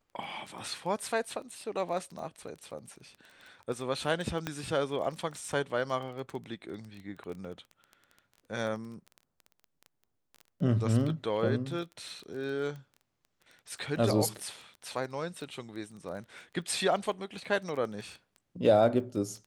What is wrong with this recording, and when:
surface crackle 15 per second −38 dBFS
0:04.47: click −18 dBFS

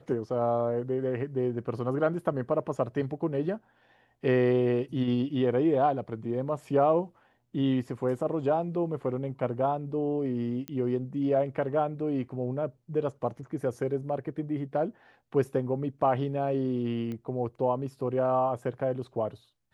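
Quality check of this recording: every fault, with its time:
0:10.68: click −19 dBFS
0:17.12: click −26 dBFS

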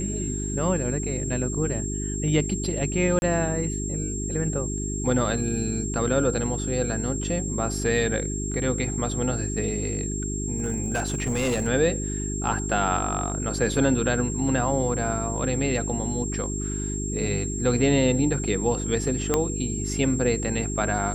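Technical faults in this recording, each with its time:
mains hum 50 Hz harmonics 8 −30 dBFS
whistle 7,500 Hz −32 dBFS
0:03.19–0:03.22: drop-out 31 ms
0:10.58–0:11.68: clipping −20.5 dBFS
0:19.34: click −7 dBFS

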